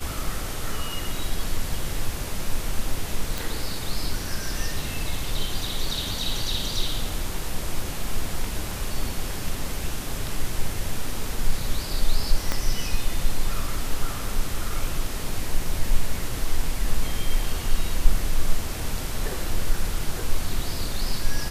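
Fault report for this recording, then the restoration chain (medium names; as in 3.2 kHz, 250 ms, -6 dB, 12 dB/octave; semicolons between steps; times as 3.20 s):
3.38 s: pop
12.52 s: pop -9 dBFS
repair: de-click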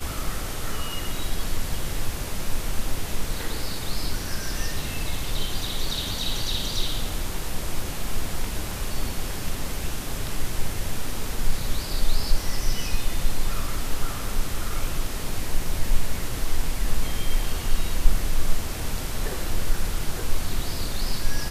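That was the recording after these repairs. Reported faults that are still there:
12.52 s: pop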